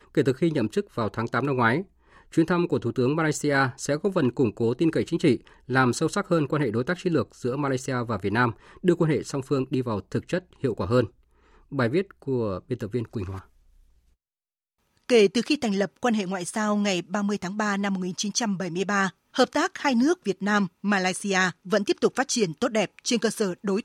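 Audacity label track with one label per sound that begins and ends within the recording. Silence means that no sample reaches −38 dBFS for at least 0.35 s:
2.330000	11.070000	sound
11.720000	13.400000	sound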